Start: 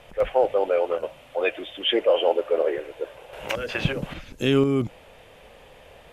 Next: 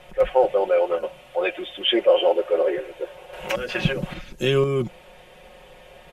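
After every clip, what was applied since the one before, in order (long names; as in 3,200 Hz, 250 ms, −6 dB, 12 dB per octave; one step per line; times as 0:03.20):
comb filter 5.5 ms, depth 71%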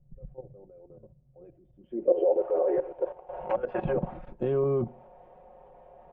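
output level in coarse steps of 14 dB
low-pass filter sweep 130 Hz → 830 Hz, 0:01.75–0:02.44
on a send at −19 dB: convolution reverb RT60 0.55 s, pre-delay 3 ms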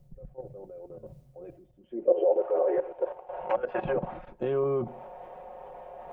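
low-shelf EQ 390 Hz −10.5 dB
reversed playback
upward compression, threshold −39 dBFS
reversed playback
level +4 dB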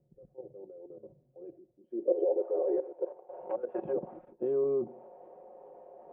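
resonant band-pass 360 Hz, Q 2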